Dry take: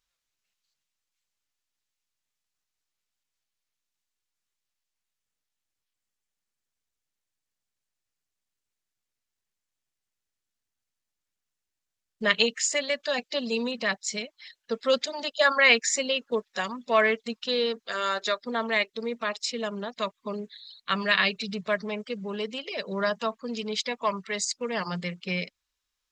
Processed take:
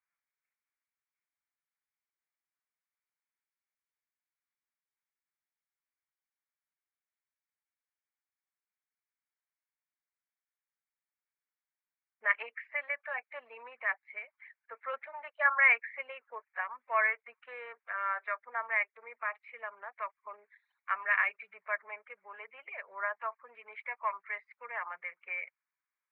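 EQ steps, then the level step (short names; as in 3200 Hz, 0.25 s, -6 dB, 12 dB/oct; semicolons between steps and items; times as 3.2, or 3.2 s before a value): HPF 940 Hz 24 dB/oct; Chebyshev low-pass 2300 Hz, order 6; bell 1500 Hz -9 dB 2.9 oct; +6.0 dB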